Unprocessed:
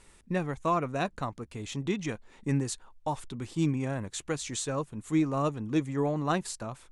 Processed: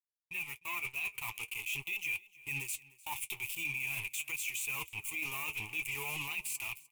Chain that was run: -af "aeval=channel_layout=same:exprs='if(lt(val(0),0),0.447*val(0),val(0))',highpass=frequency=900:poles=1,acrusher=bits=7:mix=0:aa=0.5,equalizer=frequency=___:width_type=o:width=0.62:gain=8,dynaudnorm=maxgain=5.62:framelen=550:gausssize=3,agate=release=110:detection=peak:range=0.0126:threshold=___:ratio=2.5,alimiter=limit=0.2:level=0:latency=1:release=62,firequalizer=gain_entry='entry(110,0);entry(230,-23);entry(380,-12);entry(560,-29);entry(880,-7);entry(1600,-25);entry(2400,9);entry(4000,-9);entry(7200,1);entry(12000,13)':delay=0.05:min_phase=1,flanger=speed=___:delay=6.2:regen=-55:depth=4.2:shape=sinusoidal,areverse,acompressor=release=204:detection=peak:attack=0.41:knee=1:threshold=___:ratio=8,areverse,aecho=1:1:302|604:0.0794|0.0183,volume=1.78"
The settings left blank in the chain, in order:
2400, 0.00447, 0.45, 0.0158